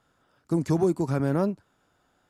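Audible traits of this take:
background noise floor −70 dBFS
spectral slope −6.0 dB per octave

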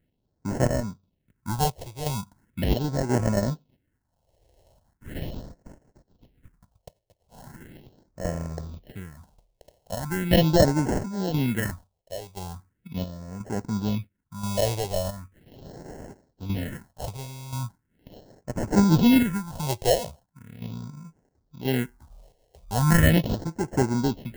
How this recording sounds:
chopped level 0.97 Hz, depth 60%, duty 65%
aliases and images of a low sample rate 1,200 Hz, jitter 0%
phaser sweep stages 4, 0.39 Hz, lowest notch 230–3,500 Hz

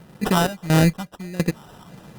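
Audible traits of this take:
phaser sweep stages 6, 1.6 Hz, lowest notch 340–1,300 Hz
aliases and images of a low sample rate 2,200 Hz, jitter 0%
sample-and-hold tremolo 4.3 Hz, depth 90%
Opus

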